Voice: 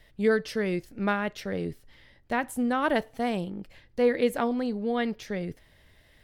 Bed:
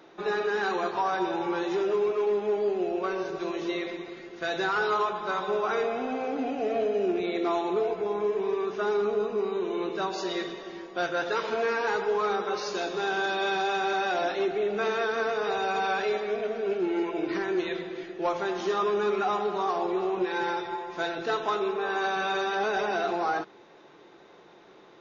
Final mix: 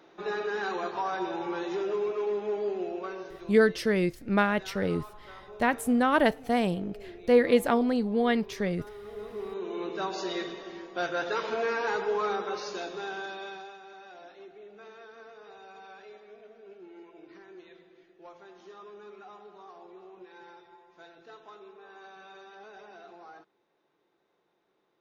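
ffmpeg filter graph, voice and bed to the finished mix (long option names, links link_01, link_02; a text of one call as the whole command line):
ffmpeg -i stem1.wav -i stem2.wav -filter_complex "[0:a]adelay=3300,volume=2.5dB[link_01];[1:a]volume=13dB,afade=type=out:start_time=2.74:duration=0.9:silence=0.177828,afade=type=in:start_time=9.01:duration=1.08:silence=0.141254,afade=type=out:start_time=12.22:duration=1.56:silence=0.105925[link_02];[link_01][link_02]amix=inputs=2:normalize=0" out.wav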